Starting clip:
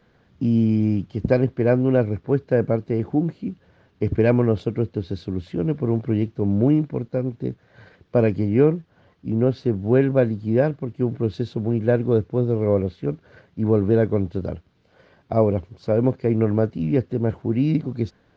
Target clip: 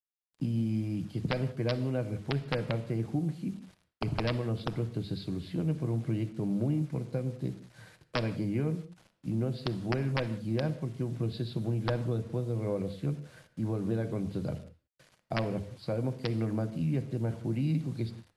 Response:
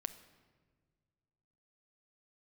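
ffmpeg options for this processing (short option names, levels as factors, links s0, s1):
-filter_complex "[0:a]bandreject=f=50:t=h:w=6,bandreject=f=100:t=h:w=6,agate=range=0.0224:threshold=0.00316:ratio=3:detection=peak,acrossover=split=110|1100[s0][s1][s2];[s1]crystalizer=i=8:c=0[s3];[s0][s3][s2]amix=inputs=3:normalize=0,equalizer=f=140:w=1.6:g=8,acompressor=threshold=0.126:ratio=4,crystalizer=i=4.5:c=0,aresample=11025,aeval=exprs='(mod(3.16*val(0)+1,2)-1)/3.16':c=same,aresample=44100,acrusher=bits=7:mix=0:aa=0.000001,bandreject=f=440:w=12[s4];[1:a]atrim=start_sample=2205,afade=t=out:st=0.24:d=0.01,atrim=end_sample=11025[s5];[s4][s5]afir=irnorm=-1:irlink=0,volume=0.398" -ar 32000 -c:a ac3 -b:a 64k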